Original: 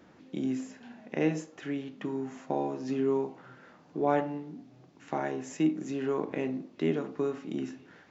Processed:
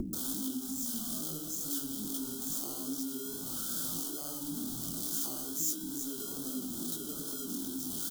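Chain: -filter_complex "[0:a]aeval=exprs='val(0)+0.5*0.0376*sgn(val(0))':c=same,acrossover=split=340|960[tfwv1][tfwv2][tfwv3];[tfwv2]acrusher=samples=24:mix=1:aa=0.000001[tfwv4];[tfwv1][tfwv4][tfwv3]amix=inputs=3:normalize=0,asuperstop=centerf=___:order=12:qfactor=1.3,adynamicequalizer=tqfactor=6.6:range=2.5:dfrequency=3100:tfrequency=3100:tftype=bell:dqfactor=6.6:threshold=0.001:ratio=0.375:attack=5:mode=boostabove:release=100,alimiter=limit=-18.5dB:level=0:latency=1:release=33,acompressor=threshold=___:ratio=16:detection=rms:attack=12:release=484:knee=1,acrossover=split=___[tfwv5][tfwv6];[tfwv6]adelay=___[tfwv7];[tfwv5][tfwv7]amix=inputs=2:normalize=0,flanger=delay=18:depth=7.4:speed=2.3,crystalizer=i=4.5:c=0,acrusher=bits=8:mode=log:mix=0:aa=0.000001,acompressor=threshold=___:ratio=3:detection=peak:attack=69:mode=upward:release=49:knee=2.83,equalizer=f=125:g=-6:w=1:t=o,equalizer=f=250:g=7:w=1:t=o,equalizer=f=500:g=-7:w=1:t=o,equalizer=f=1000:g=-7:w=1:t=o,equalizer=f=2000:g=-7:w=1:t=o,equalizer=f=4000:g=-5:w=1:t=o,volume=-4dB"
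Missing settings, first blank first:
2200, -30dB, 320, 130, -37dB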